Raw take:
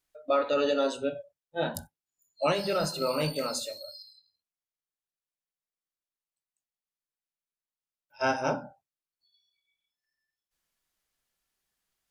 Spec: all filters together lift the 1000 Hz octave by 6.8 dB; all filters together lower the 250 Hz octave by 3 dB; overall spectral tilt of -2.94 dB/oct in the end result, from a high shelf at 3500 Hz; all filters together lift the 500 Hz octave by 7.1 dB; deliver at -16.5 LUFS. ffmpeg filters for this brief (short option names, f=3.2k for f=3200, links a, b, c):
-af "equalizer=f=250:t=o:g=-7,equalizer=f=500:t=o:g=7.5,equalizer=f=1k:t=o:g=6.5,highshelf=f=3.5k:g=7,volume=7dB"